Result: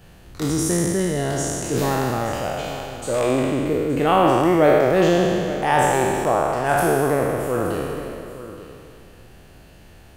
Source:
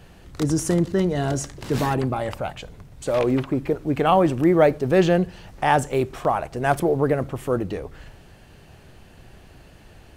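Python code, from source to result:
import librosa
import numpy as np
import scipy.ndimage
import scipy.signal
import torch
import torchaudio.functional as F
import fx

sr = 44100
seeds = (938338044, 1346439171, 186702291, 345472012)

y = fx.spec_trails(x, sr, decay_s=2.39)
y = fx.high_shelf(y, sr, hz=11000.0, db=8.5)
y = y + 10.0 ** (-14.5 / 20.0) * np.pad(y, (int(873 * sr / 1000.0), 0))[:len(y)]
y = y * 10.0 ** (-3.0 / 20.0)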